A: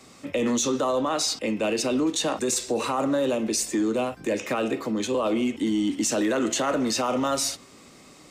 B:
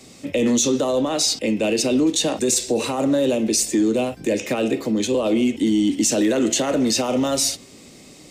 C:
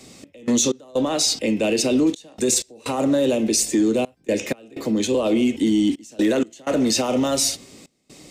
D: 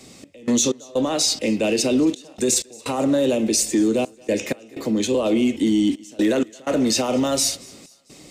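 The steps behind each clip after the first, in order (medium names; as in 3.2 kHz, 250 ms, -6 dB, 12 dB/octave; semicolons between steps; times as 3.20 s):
peaking EQ 1.2 kHz -11.5 dB 1.1 oct; trim +6.5 dB
trance gate "x.x.xxxx" 63 bpm -24 dB
thinning echo 226 ms, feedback 48%, high-pass 540 Hz, level -24 dB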